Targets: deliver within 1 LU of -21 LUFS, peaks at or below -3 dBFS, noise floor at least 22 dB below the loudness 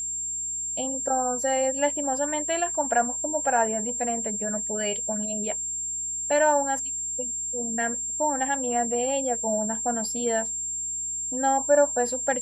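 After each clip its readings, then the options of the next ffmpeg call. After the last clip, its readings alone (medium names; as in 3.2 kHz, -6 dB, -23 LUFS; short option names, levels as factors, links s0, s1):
hum 60 Hz; highest harmonic 360 Hz; hum level -54 dBFS; steady tone 7.4 kHz; tone level -28 dBFS; loudness -25.0 LUFS; peak level -9.5 dBFS; loudness target -21.0 LUFS
-> -af "bandreject=f=60:t=h:w=4,bandreject=f=120:t=h:w=4,bandreject=f=180:t=h:w=4,bandreject=f=240:t=h:w=4,bandreject=f=300:t=h:w=4,bandreject=f=360:t=h:w=4"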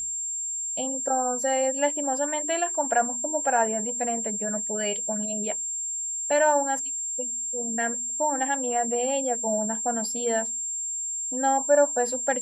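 hum not found; steady tone 7.4 kHz; tone level -28 dBFS
-> -af "bandreject=f=7400:w=30"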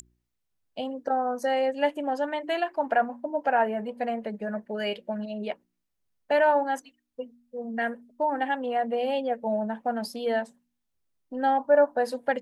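steady tone not found; loudness -27.5 LUFS; peak level -11.0 dBFS; loudness target -21.0 LUFS
-> -af "volume=2.11"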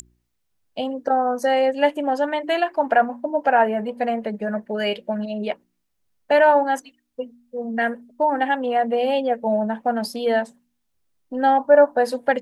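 loudness -21.0 LUFS; peak level -4.5 dBFS; noise floor -73 dBFS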